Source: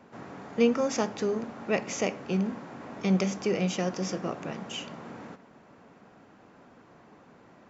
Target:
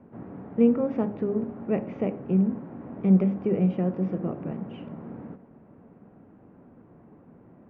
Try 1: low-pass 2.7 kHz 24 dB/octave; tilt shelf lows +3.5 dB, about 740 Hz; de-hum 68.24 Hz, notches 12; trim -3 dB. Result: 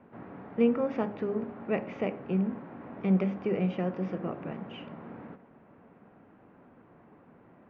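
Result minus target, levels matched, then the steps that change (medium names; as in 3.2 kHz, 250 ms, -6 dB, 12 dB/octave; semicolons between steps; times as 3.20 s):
1 kHz band +6.0 dB
change: tilt shelf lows +11 dB, about 740 Hz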